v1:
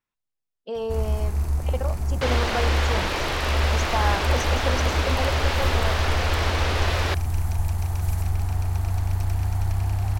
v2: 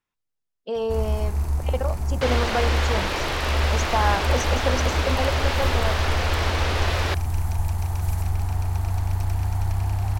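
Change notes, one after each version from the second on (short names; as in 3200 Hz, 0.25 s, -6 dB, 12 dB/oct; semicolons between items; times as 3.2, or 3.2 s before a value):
speech +3.0 dB; first sound: add bell 910 Hz +3.5 dB 0.43 oct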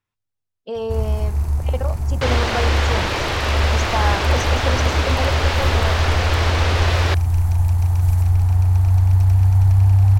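second sound +4.0 dB; master: add bell 100 Hz +13 dB 0.6 oct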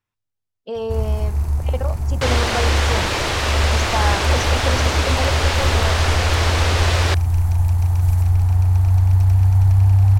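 second sound: remove air absorption 80 m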